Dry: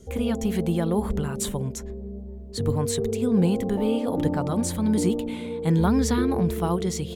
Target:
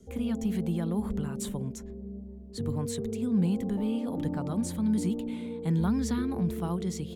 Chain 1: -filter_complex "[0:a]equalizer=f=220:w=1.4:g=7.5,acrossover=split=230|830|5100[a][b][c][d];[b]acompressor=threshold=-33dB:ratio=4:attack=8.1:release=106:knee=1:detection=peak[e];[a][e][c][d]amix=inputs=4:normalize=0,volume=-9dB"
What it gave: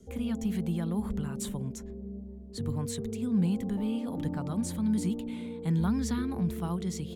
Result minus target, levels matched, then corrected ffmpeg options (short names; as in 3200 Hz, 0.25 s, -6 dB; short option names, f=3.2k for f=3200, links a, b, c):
compressor: peak gain reduction +5 dB
-filter_complex "[0:a]equalizer=f=220:w=1.4:g=7.5,acrossover=split=230|830|5100[a][b][c][d];[b]acompressor=threshold=-26.5dB:ratio=4:attack=8.1:release=106:knee=1:detection=peak[e];[a][e][c][d]amix=inputs=4:normalize=0,volume=-9dB"